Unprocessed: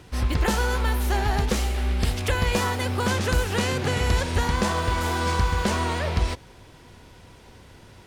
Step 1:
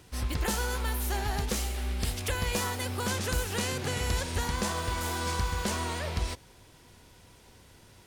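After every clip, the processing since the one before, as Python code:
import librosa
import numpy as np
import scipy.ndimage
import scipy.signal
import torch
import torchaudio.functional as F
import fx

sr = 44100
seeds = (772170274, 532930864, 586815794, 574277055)

y = fx.high_shelf(x, sr, hz=5400.0, db=11.0)
y = y * librosa.db_to_amplitude(-8.0)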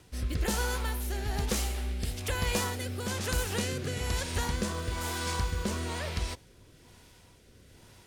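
y = fx.rotary(x, sr, hz=1.1)
y = y * librosa.db_to_amplitude(1.0)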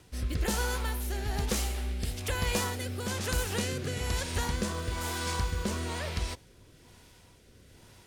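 y = x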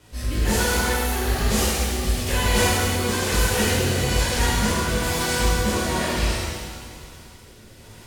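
y = fx.rev_shimmer(x, sr, seeds[0], rt60_s=1.8, semitones=7, shimmer_db=-8, drr_db=-10.5)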